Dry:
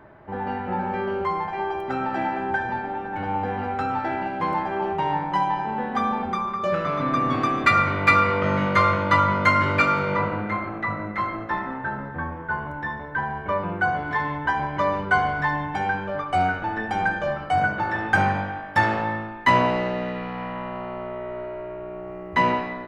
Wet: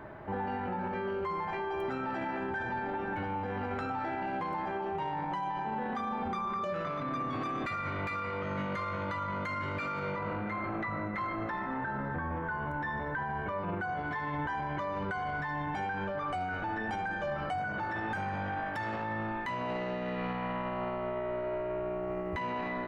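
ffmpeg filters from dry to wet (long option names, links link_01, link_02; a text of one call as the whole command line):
ffmpeg -i in.wav -filter_complex "[0:a]asettb=1/sr,asplit=3[link_01][link_02][link_03];[link_01]atrim=end=0.724[link_04];[link_02]atrim=start=0.72:end=3.9,asetpts=PTS-STARTPTS,afade=type=in:duration=0.004:curve=qsin,afade=type=out:start_time=3.176:duration=0.004:curve=qsin,bandreject=frequency=780:width=22[link_05];[link_03]atrim=start=3.896[link_06];[link_04][link_05]acrossfade=duration=0.004:curve1=hsin:curve2=qsin[link_07];[link_07][link_06]acrossfade=duration=0.004:curve1=qsin:curve2=hsin,acompressor=threshold=-30dB:ratio=6,bandreject=frequency=5100:width=24,alimiter=level_in=6dB:limit=-24dB:level=0:latency=1:release=14,volume=-6dB,volume=2.5dB" out.wav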